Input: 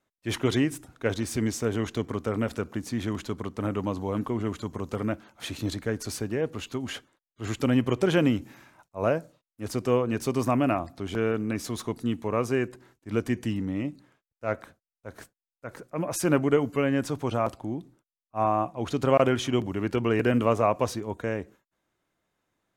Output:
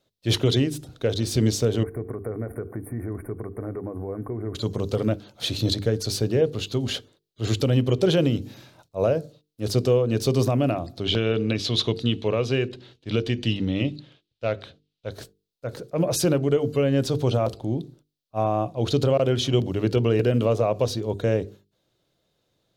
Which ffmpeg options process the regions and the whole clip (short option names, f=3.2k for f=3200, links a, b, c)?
-filter_complex "[0:a]asettb=1/sr,asplit=3[a][b][c];[a]atrim=end=1.834[d];[b]atrim=start=1.83:end=4.55,asetpts=PTS-STARTPTS,afade=t=in:d=0.004:c=qsin,afade=t=out:st=2.716:d=0.004:c=qsin,aecho=1:1:2.7:0.36,atrim=end_sample=119952,acompressor=threshold=-36dB:ratio=3:attack=3.2:release=140:knee=1:detection=peak,asuperstop=centerf=4600:order=20:qfactor=0.67[e];[c]atrim=start=4.546[f];[d][e]acrossfade=d=0.004:c1=hsin:c2=qsin[g];[g][f]acrossfade=d=0.004:c1=qsin:c2=hsin,asettb=1/sr,asplit=3[h][i][j];[h]atrim=end=11.044[k];[i]atrim=start=11.04:end=15.11,asetpts=PTS-STARTPTS,afade=t=in:d=0.004:c=qsin,afade=t=out:st=4.066:d=0.004:c=qsin,lowpass=f=3.1k:t=q:w=1.9,aemphasis=mode=production:type=75kf[l];[j]atrim=start=15.106[m];[k][l]acrossfade=d=0.004:c1=hsin:c2=qsin[n];[n][m]acrossfade=d=0.004:c1=qsin:c2=hsin,bandreject=f=50:t=h:w=6,bandreject=f=100:t=h:w=6,bandreject=f=150:t=h:w=6,bandreject=f=200:t=h:w=6,bandreject=f=250:t=h:w=6,bandreject=f=300:t=h:w=6,bandreject=f=350:t=h:w=6,bandreject=f=400:t=h:w=6,bandreject=f=450:t=h:w=6,alimiter=limit=-17dB:level=0:latency=1:release=347,equalizer=f=125:t=o:w=1:g=7,equalizer=f=250:t=o:w=1:g=-3,equalizer=f=500:t=o:w=1:g=6,equalizer=f=1k:t=o:w=1:g=-7,equalizer=f=2k:t=o:w=1:g=-8,equalizer=f=4k:t=o:w=1:g=11,equalizer=f=8k:t=o:w=1:g=-4,volume=5.5dB"